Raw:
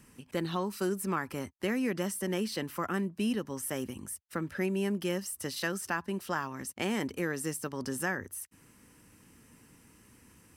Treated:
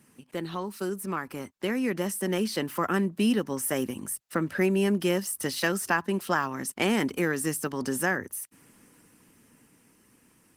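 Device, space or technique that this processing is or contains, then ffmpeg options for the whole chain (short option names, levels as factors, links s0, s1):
video call: -filter_complex "[0:a]asplit=3[s0][s1][s2];[s0]afade=t=out:st=6.95:d=0.02[s3];[s1]adynamicequalizer=threshold=0.00447:dfrequency=570:dqfactor=2:tfrequency=570:tqfactor=2:attack=5:release=100:ratio=0.375:range=2.5:mode=cutabove:tftype=bell,afade=t=in:st=6.95:d=0.02,afade=t=out:st=7.81:d=0.02[s4];[s2]afade=t=in:st=7.81:d=0.02[s5];[s3][s4][s5]amix=inputs=3:normalize=0,highpass=140,dynaudnorm=f=200:g=21:m=2.37" -ar 48000 -c:a libopus -b:a 20k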